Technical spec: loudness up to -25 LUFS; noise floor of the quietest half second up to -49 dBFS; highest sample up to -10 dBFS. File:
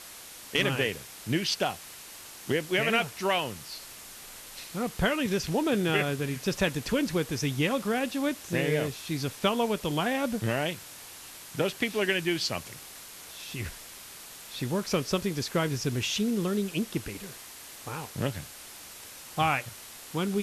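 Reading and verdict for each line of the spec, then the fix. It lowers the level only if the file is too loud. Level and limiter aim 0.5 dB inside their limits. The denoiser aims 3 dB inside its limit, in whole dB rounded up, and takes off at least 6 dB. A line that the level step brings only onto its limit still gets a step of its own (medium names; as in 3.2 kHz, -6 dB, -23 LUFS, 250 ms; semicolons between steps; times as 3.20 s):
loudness -29.5 LUFS: pass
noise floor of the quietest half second -46 dBFS: fail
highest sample -12.5 dBFS: pass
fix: noise reduction 6 dB, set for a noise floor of -46 dBFS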